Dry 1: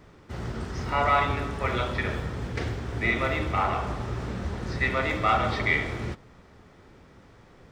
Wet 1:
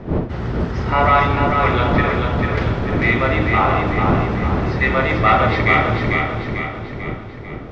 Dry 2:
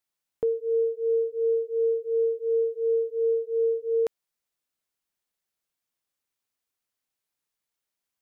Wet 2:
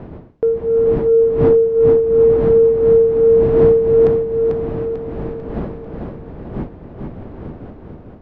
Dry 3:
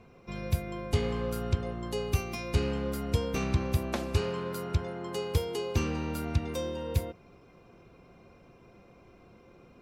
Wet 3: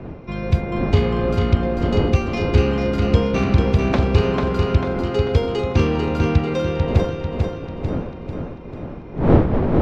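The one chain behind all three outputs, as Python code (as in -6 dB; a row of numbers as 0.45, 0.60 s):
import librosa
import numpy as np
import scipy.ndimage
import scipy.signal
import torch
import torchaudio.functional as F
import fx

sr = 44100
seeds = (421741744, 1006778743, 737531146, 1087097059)

p1 = fx.dmg_wind(x, sr, seeds[0], corner_hz=330.0, level_db=-37.0)
p2 = 10.0 ** (-18.5 / 20.0) * np.tanh(p1 / 10.0 ** (-18.5 / 20.0))
p3 = p1 + F.gain(torch.from_numpy(p2), -6.5).numpy()
p4 = fx.air_absorb(p3, sr, metres=180.0)
p5 = fx.echo_feedback(p4, sr, ms=444, feedback_pct=50, wet_db=-4.5)
y = p5 * 10.0 ** (-2 / 20.0) / np.max(np.abs(p5))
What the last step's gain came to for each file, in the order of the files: +6.5, +7.0, +8.0 dB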